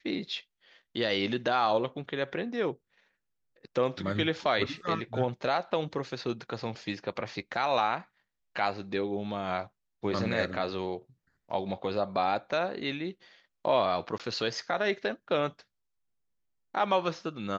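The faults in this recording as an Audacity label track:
14.180000	14.200000	dropout 17 ms

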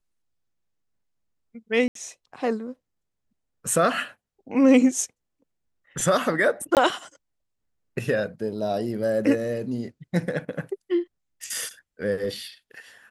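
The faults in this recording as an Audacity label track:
1.880000	1.950000	dropout 73 ms
6.750000	6.770000	dropout 18 ms

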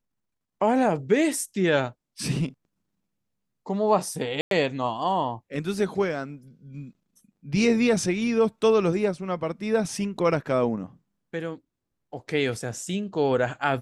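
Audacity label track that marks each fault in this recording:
4.410000	4.510000	dropout 102 ms

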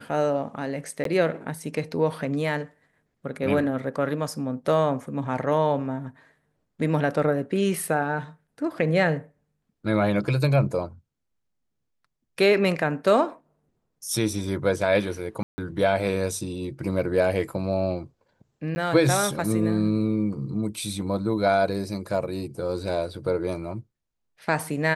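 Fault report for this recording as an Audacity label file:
1.040000	1.050000	dropout 13 ms
15.430000	15.580000	dropout 150 ms
18.750000	18.760000	dropout 10 ms

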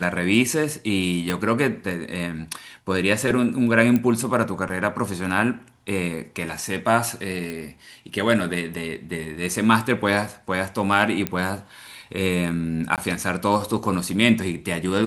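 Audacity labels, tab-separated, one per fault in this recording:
1.300000	1.300000	pop -9 dBFS
3.960000	3.960000	pop -10 dBFS
7.500000	7.500000	pop -18 dBFS
11.270000	11.270000	pop -8 dBFS
12.960000	12.980000	dropout 18 ms

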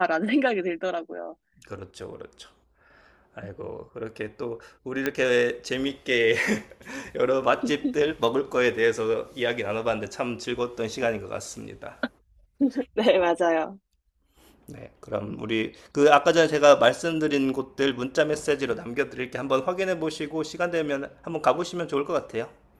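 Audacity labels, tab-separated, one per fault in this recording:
5.060000	5.060000	pop -11 dBFS

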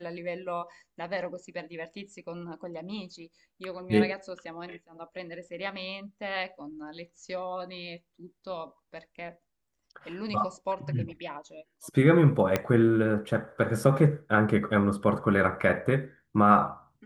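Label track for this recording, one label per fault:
12.560000	12.560000	pop -10 dBFS

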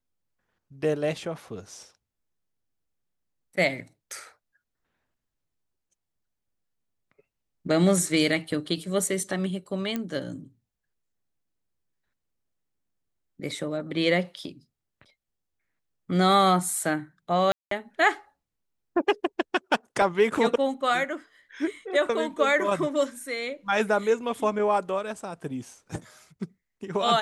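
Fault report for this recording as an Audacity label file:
9.960000	9.960000	pop -16 dBFS
17.520000	17.710000	dropout 193 ms
20.020000	20.020000	dropout 2.1 ms

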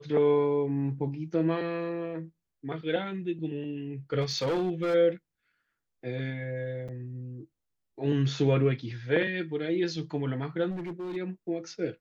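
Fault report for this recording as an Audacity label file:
4.210000	4.950000	clipped -24.5 dBFS
6.880000	6.890000	dropout 6.4 ms
10.700000	11.170000	clipped -32.5 dBFS

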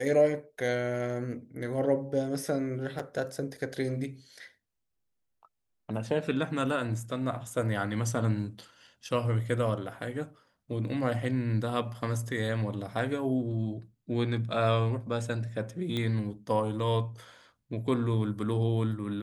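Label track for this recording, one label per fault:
2.990000	3.000000	dropout 5.3 ms
15.970000	15.970000	pop -20 dBFS

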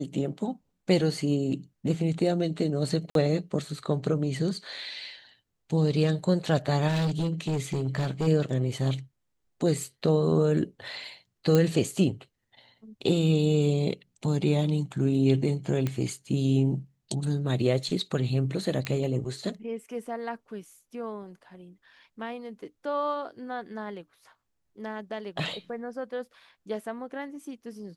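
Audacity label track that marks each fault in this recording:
3.100000	3.150000	dropout 52 ms
6.870000	8.280000	clipped -23.5 dBFS
11.550000	11.550000	pop -11 dBFS
15.870000	15.870000	pop -16 dBFS
18.850000	18.850000	pop -18 dBFS

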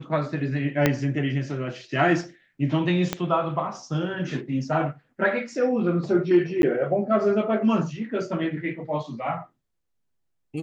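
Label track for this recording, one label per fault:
0.860000	0.860000	pop -5 dBFS
3.130000	3.130000	pop -9 dBFS
6.620000	6.630000	dropout 11 ms

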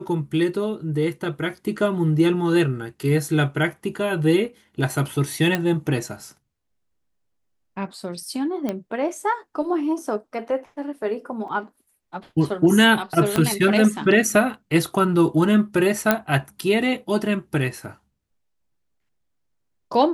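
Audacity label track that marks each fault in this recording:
5.550000	5.550000	pop -8 dBFS
8.690000	8.690000	pop -13 dBFS
11.480000	11.480000	dropout 3.5 ms
13.360000	13.360000	pop -7 dBFS
16.110000	16.110000	pop -2 dBFS

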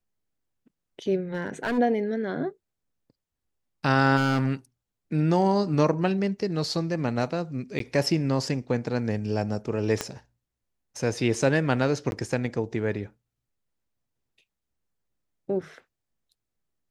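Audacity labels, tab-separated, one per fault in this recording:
1.340000	1.790000	clipped -23.5 dBFS
4.160000	4.530000	clipped -19.5 dBFS
7.790000	7.800000	dropout 13 ms
10.010000	10.010000	pop -12 dBFS
12.110000	12.120000	dropout 11 ms

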